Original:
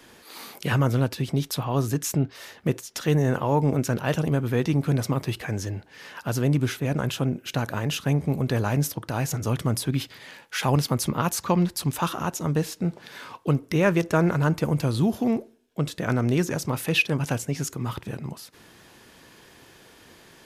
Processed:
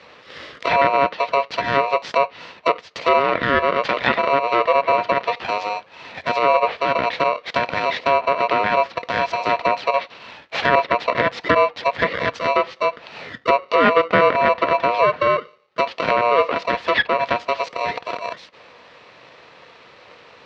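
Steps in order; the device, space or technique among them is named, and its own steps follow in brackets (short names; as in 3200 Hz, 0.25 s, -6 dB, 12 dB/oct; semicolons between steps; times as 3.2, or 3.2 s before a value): 3.19–4.19 weighting filter D; ring modulator pedal into a guitar cabinet (polarity switched at an audio rate 830 Hz; speaker cabinet 95–4300 Hz, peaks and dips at 350 Hz -3 dB, 500 Hz +7 dB, 1900 Hz +4 dB); treble ducked by the level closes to 2300 Hz, closed at -18.5 dBFS; gain +5 dB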